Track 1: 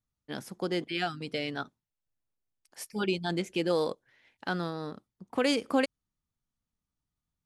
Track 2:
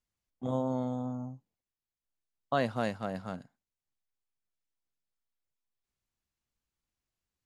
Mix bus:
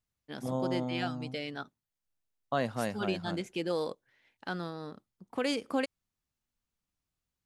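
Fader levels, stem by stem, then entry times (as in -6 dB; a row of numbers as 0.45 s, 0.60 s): -4.5 dB, -1.5 dB; 0.00 s, 0.00 s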